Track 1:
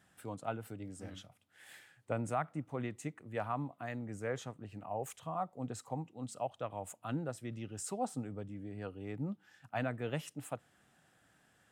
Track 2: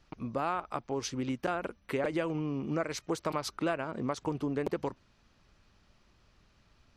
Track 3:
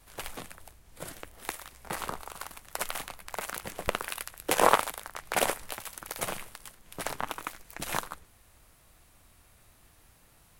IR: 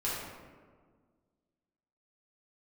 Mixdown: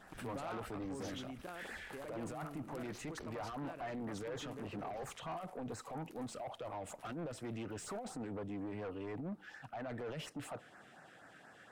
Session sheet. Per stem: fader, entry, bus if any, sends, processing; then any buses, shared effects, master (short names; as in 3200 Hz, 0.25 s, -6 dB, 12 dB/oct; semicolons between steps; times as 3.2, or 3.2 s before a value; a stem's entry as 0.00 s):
-1.0 dB, 0.00 s, bus A, no send, negative-ratio compressor -39 dBFS, ratio -0.5; overdrive pedal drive 23 dB, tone 1400 Hz, clips at -25 dBFS; LFO notch sine 4.2 Hz 820–3400 Hz
-8.0 dB, 0.00 s, no bus, no send, sustainer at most 72 dB/s; auto duck -8 dB, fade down 1.80 s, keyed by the first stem
2.79 s -14.5 dB -> 3.21 s -23 dB, 0.00 s, bus A, no send, compressor, threshold -34 dBFS, peak gain reduction 18 dB
bus A: 0.0 dB, limiter -32.5 dBFS, peak gain reduction 6 dB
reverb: off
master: high shelf 7800 Hz -4.5 dB; soft clip -37.5 dBFS, distortion -14 dB